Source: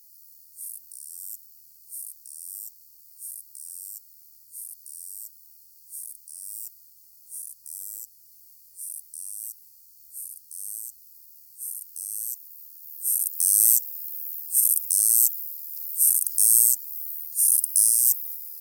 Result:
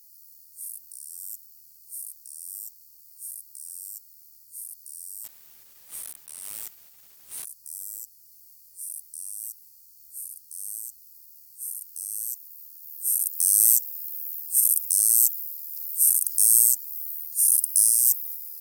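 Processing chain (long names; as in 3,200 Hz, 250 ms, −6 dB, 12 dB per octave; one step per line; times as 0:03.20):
0:05.24–0:07.46: one scale factor per block 3 bits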